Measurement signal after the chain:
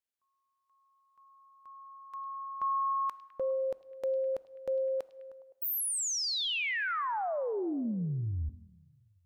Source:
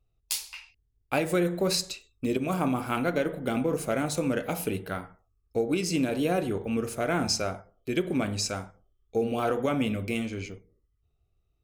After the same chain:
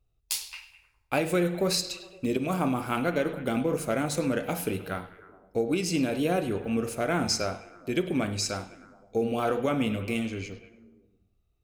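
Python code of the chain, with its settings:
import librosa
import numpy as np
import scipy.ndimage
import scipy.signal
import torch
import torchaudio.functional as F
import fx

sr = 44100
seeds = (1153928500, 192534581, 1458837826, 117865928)

y = fx.echo_stepped(x, sr, ms=103, hz=3600.0, octaves=-0.7, feedback_pct=70, wet_db=-11)
y = fx.rev_plate(y, sr, seeds[0], rt60_s=1.3, hf_ratio=0.7, predelay_ms=0, drr_db=17.5)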